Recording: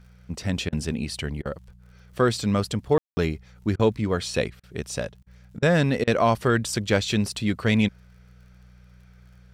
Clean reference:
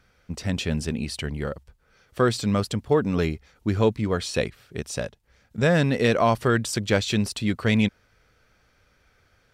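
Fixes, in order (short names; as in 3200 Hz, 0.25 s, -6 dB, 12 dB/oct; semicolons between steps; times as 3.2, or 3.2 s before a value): de-click; de-hum 61 Hz, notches 3; room tone fill 2.98–3.17; interpolate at 0.69/1.42/3.76/4.6/5.23/5.59/6.04, 33 ms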